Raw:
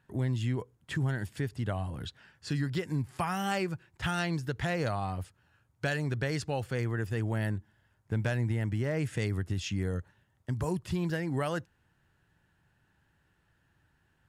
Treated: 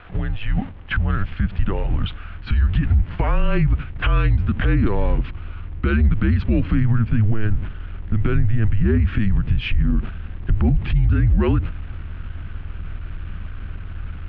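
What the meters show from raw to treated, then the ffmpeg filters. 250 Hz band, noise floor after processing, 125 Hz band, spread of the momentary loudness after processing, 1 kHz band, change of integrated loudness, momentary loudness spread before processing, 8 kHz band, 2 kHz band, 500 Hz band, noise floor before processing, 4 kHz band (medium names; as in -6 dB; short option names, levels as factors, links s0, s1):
+11.0 dB, -34 dBFS, +12.5 dB, 15 LU, +5.0 dB, +12.0 dB, 7 LU, under -25 dB, +7.5 dB, +5.5 dB, -72 dBFS, +5.5 dB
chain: -af "aeval=exprs='val(0)+0.5*0.00708*sgn(val(0))':c=same,agate=range=0.398:threshold=0.00891:ratio=16:detection=peak,aeval=exprs='val(0)+0.00355*(sin(2*PI*60*n/s)+sin(2*PI*2*60*n/s)/2+sin(2*PI*3*60*n/s)/3+sin(2*PI*4*60*n/s)/4+sin(2*PI*5*60*n/s)/5)':c=same,acompressor=threshold=0.0316:ratio=6,highpass=f=190:t=q:w=0.5412,highpass=f=190:t=q:w=1.307,lowpass=f=3300:t=q:w=0.5176,lowpass=f=3300:t=q:w=0.7071,lowpass=f=3300:t=q:w=1.932,afreqshift=-220,asubboost=boost=7:cutoff=230,alimiter=level_in=14.1:limit=0.891:release=50:level=0:latency=1,volume=0.355"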